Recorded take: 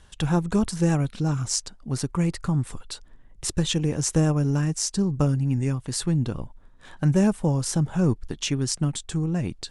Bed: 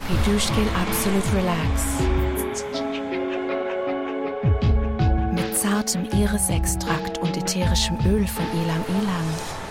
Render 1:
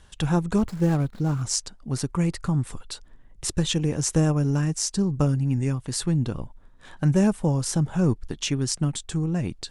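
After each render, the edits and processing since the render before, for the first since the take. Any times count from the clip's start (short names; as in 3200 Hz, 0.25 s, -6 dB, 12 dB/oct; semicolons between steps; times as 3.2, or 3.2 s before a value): 0.58–1.42 median filter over 15 samples; 2.28–2.71 short-mantissa float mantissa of 8-bit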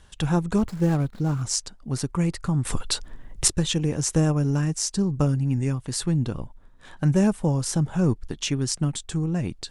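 2.65–3.48 gain +10.5 dB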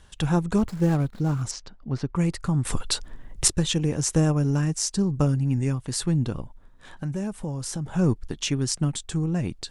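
1.51–2.16 air absorption 210 m; 6.4–7.86 compressor 2.5:1, threshold -30 dBFS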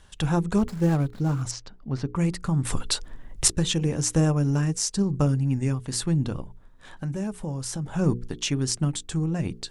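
notches 60/120/180/240/300/360/420/480 Hz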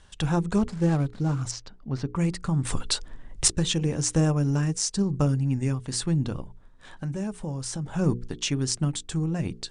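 elliptic low-pass 9500 Hz, stop band 40 dB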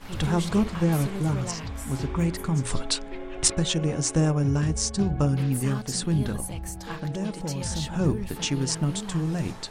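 add bed -12.5 dB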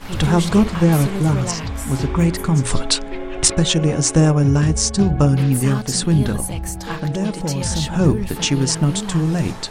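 gain +8.5 dB; limiter -2 dBFS, peak gain reduction 3 dB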